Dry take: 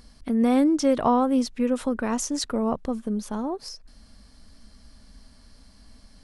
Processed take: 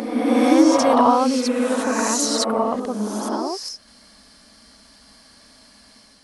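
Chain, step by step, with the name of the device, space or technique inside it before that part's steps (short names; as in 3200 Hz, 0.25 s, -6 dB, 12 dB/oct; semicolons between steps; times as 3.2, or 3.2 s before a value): ghost voice (reverse; reverb RT60 1.6 s, pre-delay 55 ms, DRR -2 dB; reverse; HPF 590 Hz 6 dB/oct); gain +6 dB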